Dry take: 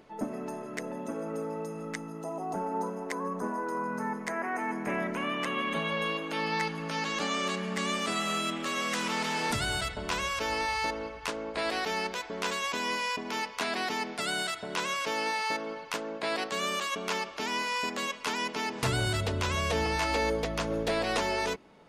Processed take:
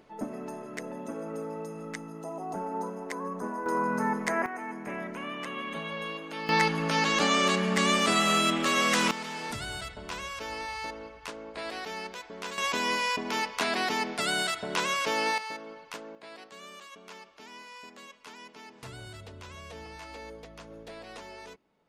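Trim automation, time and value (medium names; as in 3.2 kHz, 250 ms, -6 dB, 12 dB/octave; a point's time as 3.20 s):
-1.5 dB
from 3.66 s +5 dB
from 4.46 s -5 dB
from 6.49 s +6.5 dB
from 9.11 s -6 dB
from 12.58 s +3 dB
from 15.38 s -7 dB
from 16.15 s -15.5 dB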